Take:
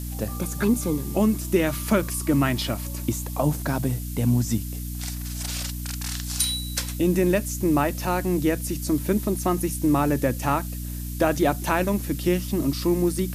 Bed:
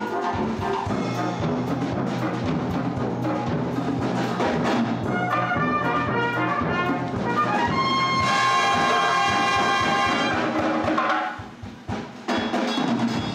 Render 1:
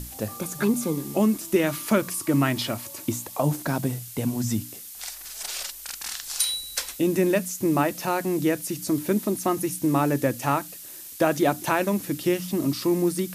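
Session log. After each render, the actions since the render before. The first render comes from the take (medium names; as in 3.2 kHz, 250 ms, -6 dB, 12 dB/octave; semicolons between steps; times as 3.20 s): hum notches 60/120/180/240/300 Hz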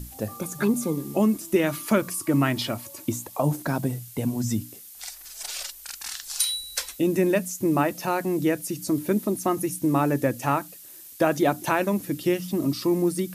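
noise reduction 6 dB, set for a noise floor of -41 dBFS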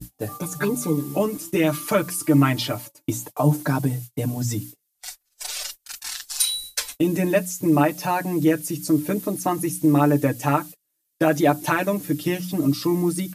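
gate -37 dBFS, range -33 dB; comb 6.7 ms, depth 96%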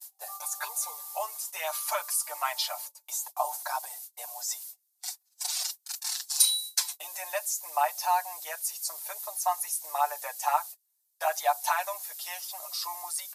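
steep high-pass 720 Hz 48 dB/octave; high-order bell 2 kHz -8 dB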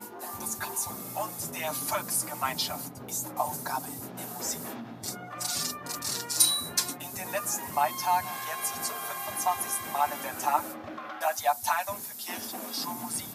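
add bed -18 dB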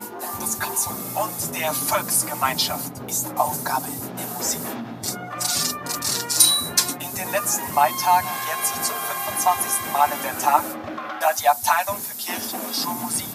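trim +8.5 dB; peak limiter -1 dBFS, peak gain reduction 2 dB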